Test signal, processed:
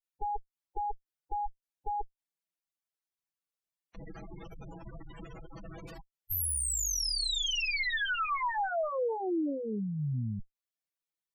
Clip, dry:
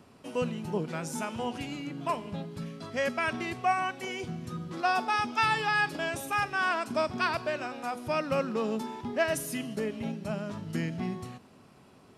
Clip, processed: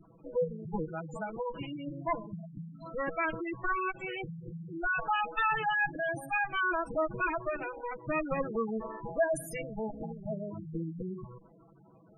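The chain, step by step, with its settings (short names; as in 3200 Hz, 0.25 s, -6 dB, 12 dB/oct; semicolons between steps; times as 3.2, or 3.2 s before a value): minimum comb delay 6.1 ms; spectral gate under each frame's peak -10 dB strong; dynamic EQ 170 Hz, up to -6 dB, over -51 dBFS, Q 4.6; gain +1.5 dB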